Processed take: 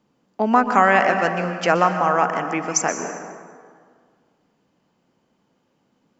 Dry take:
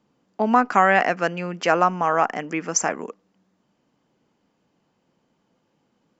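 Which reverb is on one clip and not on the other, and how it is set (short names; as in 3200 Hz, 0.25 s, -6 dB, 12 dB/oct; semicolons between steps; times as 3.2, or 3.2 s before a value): plate-style reverb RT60 1.9 s, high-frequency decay 0.55×, pre-delay 0.11 s, DRR 6.5 dB; gain +1 dB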